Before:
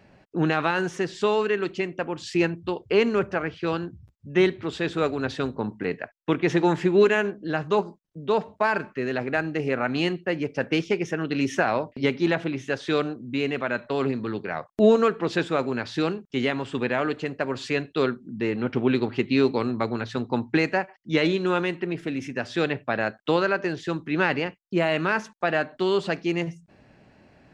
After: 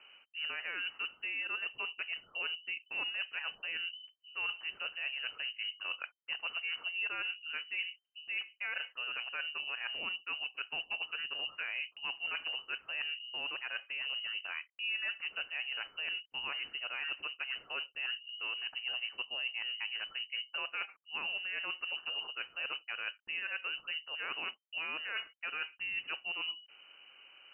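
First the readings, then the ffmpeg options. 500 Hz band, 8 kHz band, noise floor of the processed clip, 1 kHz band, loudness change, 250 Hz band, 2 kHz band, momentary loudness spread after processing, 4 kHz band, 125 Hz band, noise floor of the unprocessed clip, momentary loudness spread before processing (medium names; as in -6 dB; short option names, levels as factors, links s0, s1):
-32.5 dB, no reading, -71 dBFS, -19.0 dB, -12.0 dB, -39.5 dB, -7.0 dB, 4 LU, 0.0 dB, under -40 dB, -60 dBFS, 8 LU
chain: -af "areverse,acompressor=threshold=0.0224:ratio=6,areverse,lowpass=f=2600:t=q:w=0.5098,lowpass=f=2600:t=q:w=0.6013,lowpass=f=2600:t=q:w=0.9,lowpass=f=2600:t=q:w=2.563,afreqshift=-3100,volume=0.708"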